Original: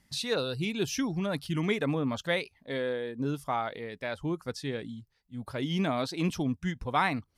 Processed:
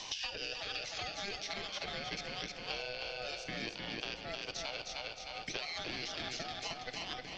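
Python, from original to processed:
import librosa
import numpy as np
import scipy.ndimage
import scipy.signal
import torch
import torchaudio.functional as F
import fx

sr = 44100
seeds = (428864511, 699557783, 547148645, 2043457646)

y = scipy.signal.sosfilt(scipy.signal.butter(4, 150.0, 'highpass', fs=sr, output='sos'), x)
y = fx.cheby_harmonics(y, sr, harmonics=(7,), levels_db=(-26,), full_scale_db=-13.5)
y = fx.tilt_eq(y, sr, slope=4.5)
y = fx.over_compress(y, sr, threshold_db=-36.0, ratio=-1.0)
y = y * np.sin(2.0 * np.pi * 1000.0 * np.arange(len(y)) / sr)
y = scipy.signal.sosfilt(scipy.signal.ellip(4, 1.0, 50, 6000.0, 'lowpass', fs=sr, output='sos'), y)
y = fx.peak_eq(y, sr, hz=1300.0, db=-10.5, octaves=0.8)
y = fx.echo_feedback(y, sr, ms=309, feedback_pct=34, wet_db=-4)
y = fx.room_shoebox(y, sr, seeds[0], volume_m3=1300.0, walls='mixed', distance_m=0.52)
y = fx.band_squash(y, sr, depth_pct=100)
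y = y * librosa.db_to_amplitude(-1.5)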